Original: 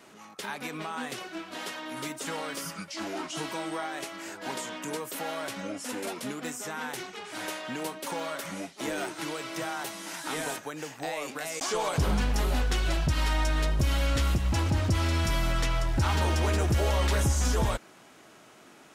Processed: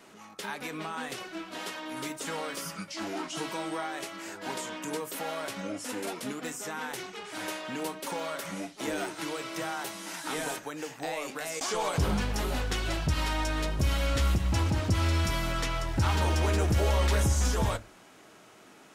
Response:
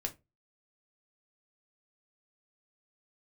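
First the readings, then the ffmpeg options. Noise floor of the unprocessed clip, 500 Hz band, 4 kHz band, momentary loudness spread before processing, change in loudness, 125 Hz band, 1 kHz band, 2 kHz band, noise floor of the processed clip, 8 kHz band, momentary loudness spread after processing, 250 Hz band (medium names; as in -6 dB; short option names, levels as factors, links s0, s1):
-54 dBFS, -0.5 dB, -1.0 dB, 11 LU, -1.0 dB, -1.0 dB, -0.5 dB, -1.0 dB, -54 dBFS, -1.0 dB, 11 LU, -0.5 dB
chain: -filter_complex "[0:a]asplit=2[s0][s1];[1:a]atrim=start_sample=2205[s2];[s1][s2]afir=irnorm=-1:irlink=0,volume=0.596[s3];[s0][s3]amix=inputs=2:normalize=0,volume=0.596"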